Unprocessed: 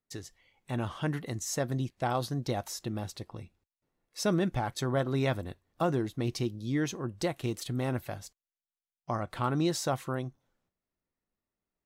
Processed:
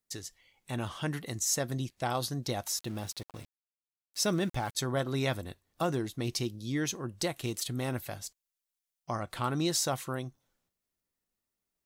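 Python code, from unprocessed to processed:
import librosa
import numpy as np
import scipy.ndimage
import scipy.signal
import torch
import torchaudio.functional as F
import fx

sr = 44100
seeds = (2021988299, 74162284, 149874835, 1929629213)

y = fx.high_shelf(x, sr, hz=3000.0, db=10.5)
y = fx.sample_gate(y, sr, floor_db=-44.5, at=(2.74, 4.75))
y = y * librosa.db_to_amplitude(-2.5)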